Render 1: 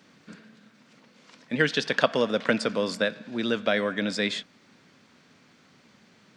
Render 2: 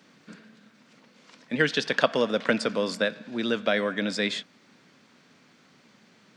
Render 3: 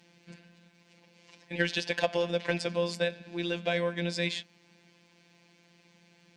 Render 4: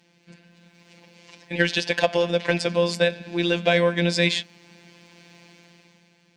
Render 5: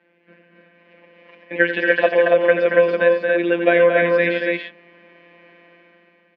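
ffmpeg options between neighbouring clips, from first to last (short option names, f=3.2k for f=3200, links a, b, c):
-af "highpass=120"
-af "superequalizer=10b=0.316:11b=0.708:12b=1.41,asoftclip=type=tanh:threshold=-11.5dB,afftfilt=real='hypot(re,im)*cos(PI*b)':imag='0':win_size=1024:overlap=0.75"
-af "dynaudnorm=f=130:g=11:m=12dB"
-filter_complex "[0:a]highpass=f=240:w=0.5412,highpass=f=240:w=1.3066,equalizer=f=560:t=q:w=4:g=5,equalizer=f=820:t=q:w=4:g=-5,equalizer=f=1.6k:t=q:w=4:g=5,lowpass=f=2.3k:w=0.5412,lowpass=f=2.3k:w=1.3066,asplit=2[a][b];[b]aecho=0:1:87.46|227.4|282.8:0.316|0.501|0.708[c];[a][c]amix=inputs=2:normalize=0,volume=2.5dB"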